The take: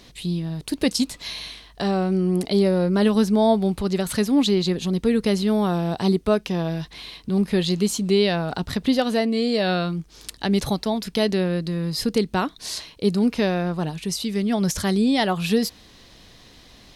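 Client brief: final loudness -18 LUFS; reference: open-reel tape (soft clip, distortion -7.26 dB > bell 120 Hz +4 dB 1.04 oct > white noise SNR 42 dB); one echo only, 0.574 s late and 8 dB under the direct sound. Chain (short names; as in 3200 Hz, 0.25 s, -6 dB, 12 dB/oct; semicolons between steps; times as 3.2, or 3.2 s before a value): echo 0.574 s -8 dB; soft clip -24 dBFS; bell 120 Hz +4 dB 1.04 oct; white noise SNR 42 dB; gain +9.5 dB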